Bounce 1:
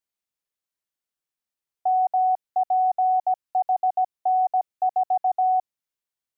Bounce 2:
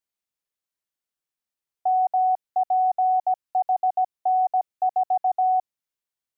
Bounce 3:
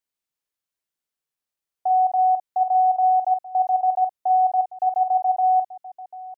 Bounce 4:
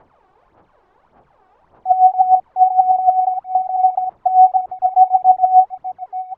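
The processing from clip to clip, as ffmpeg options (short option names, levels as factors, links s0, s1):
-af anull
-af "aecho=1:1:47|742:0.422|0.158"
-af "aeval=exprs='val(0)+0.5*0.0133*sgn(val(0))':c=same,aphaser=in_gain=1:out_gain=1:delay=2.7:decay=0.67:speed=1.7:type=sinusoidal,lowpass=f=880:t=q:w=2,volume=0.596"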